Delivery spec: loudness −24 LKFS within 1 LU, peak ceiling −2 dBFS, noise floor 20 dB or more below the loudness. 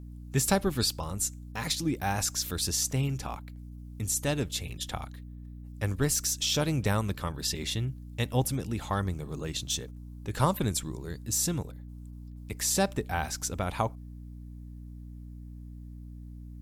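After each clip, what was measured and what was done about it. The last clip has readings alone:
mains hum 60 Hz; hum harmonics up to 300 Hz; level of the hum −41 dBFS; integrated loudness −30.0 LKFS; sample peak −9.0 dBFS; target loudness −24.0 LKFS
→ hum removal 60 Hz, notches 5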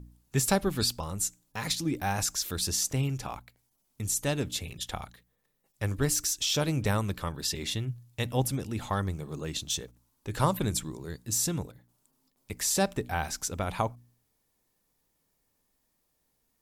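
mains hum none found; integrated loudness −30.5 LKFS; sample peak −9.5 dBFS; target loudness −24.0 LKFS
→ level +6.5 dB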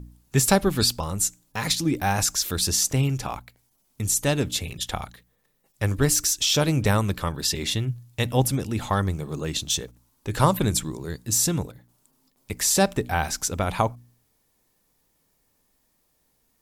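integrated loudness −24.0 LKFS; sample peak −3.0 dBFS; background noise floor −69 dBFS

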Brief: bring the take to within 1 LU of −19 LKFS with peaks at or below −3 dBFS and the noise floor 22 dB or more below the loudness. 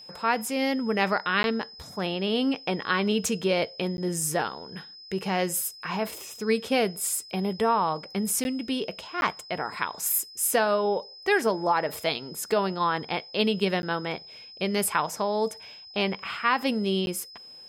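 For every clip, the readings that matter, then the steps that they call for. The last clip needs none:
number of dropouts 6; longest dropout 11 ms; interfering tone 5,100 Hz; level of the tone −44 dBFS; integrated loudness −27.0 LKFS; sample peak −9.0 dBFS; target loudness −19.0 LKFS
→ repair the gap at 0:01.43/0:03.97/0:08.44/0:09.21/0:13.82/0:17.06, 11 ms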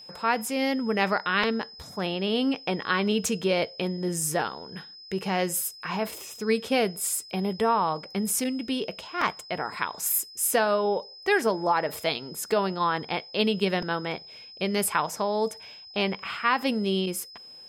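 number of dropouts 0; interfering tone 5,100 Hz; level of the tone −44 dBFS
→ notch filter 5,100 Hz, Q 30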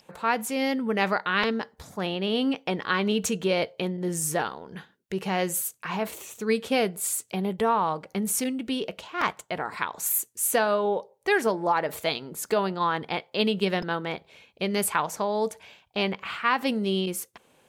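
interfering tone none found; integrated loudness −27.0 LKFS; sample peak −9.5 dBFS; target loudness −19.0 LKFS
→ level +8 dB
brickwall limiter −3 dBFS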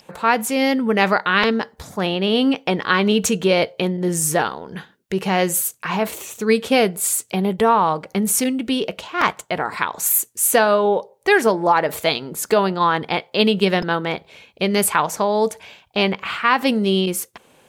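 integrated loudness −19.0 LKFS; sample peak −3.0 dBFS; background noise floor −57 dBFS

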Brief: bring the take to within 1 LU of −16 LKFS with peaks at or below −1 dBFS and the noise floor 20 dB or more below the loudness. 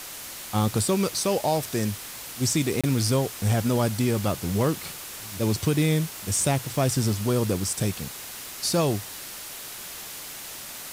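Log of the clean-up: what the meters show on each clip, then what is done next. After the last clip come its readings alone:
number of dropouts 1; longest dropout 26 ms; background noise floor −39 dBFS; target noise floor −46 dBFS; integrated loudness −26.0 LKFS; sample peak −12.0 dBFS; target loudness −16.0 LKFS
→ repair the gap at 0:02.81, 26 ms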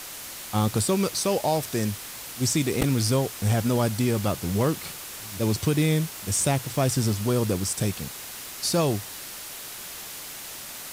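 number of dropouts 0; background noise floor −39 dBFS; target noise floor −46 dBFS
→ noise reduction from a noise print 7 dB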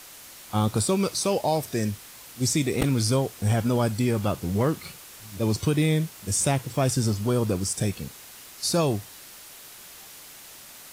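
background noise floor −46 dBFS; integrated loudness −25.5 LKFS; sample peak −9.0 dBFS; target loudness −16.0 LKFS
→ level +9.5 dB
brickwall limiter −1 dBFS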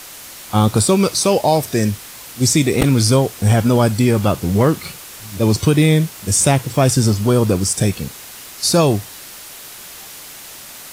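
integrated loudness −16.0 LKFS; sample peak −1.0 dBFS; background noise floor −36 dBFS

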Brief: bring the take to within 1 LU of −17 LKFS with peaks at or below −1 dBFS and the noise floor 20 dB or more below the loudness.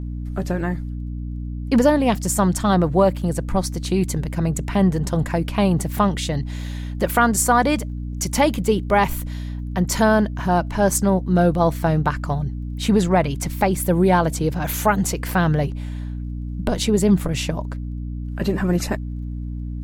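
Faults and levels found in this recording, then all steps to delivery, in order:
crackle rate 15 per second; mains hum 60 Hz; hum harmonics up to 300 Hz; level of the hum −26 dBFS; integrated loudness −21.0 LKFS; sample peak −3.5 dBFS; target loudness −17.0 LKFS
→ click removal
hum removal 60 Hz, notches 5
level +4 dB
brickwall limiter −1 dBFS

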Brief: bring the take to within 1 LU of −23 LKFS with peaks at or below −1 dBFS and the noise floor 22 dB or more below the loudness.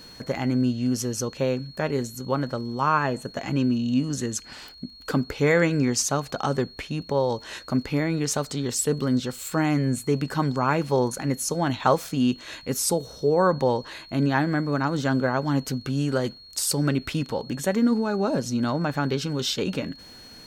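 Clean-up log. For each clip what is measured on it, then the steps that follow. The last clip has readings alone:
crackle rate 24 per second; interfering tone 4,300 Hz; level of the tone −45 dBFS; integrated loudness −25.0 LKFS; sample peak −6.5 dBFS; target loudness −23.0 LKFS
→ click removal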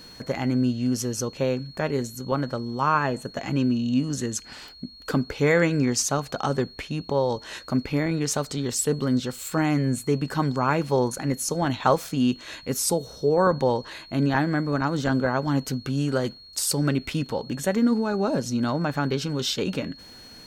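crackle rate 0.34 per second; interfering tone 4,300 Hz; level of the tone −45 dBFS
→ notch filter 4,300 Hz, Q 30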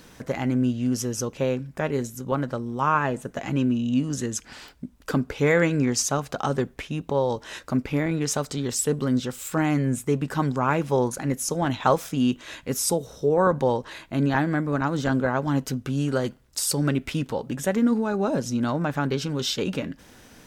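interfering tone none found; integrated loudness −25.5 LKFS; sample peak −6.5 dBFS; target loudness −23.0 LKFS
→ level +2.5 dB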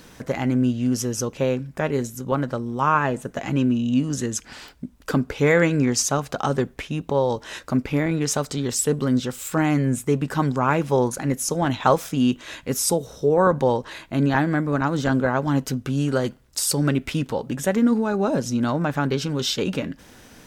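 integrated loudness −23.0 LKFS; sample peak −4.0 dBFS; background noise floor −50 dBFS

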